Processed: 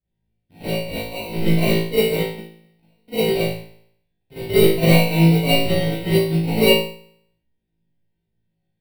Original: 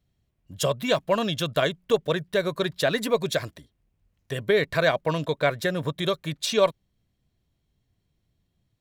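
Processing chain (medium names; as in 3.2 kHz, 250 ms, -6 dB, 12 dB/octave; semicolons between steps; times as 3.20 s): rattle on loud lows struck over -38 dBFS, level -29 dBFS; 0.65–1.37 s: high-pass 1 kHz 6 dB/octave; 2.33–3.08 s: inverted gate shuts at -23 dBFS, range -39 dB; sample-and-hold 26×; static phaser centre 2.9 kHz, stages 4; flutter echo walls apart 3.1 m, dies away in 0.71 s; Schroeder reverb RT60 0.35 s, combs from 33 ms, DRR -9 dB; upward expansion 1.5:1, over -28 dBFS; trim -3.5 dB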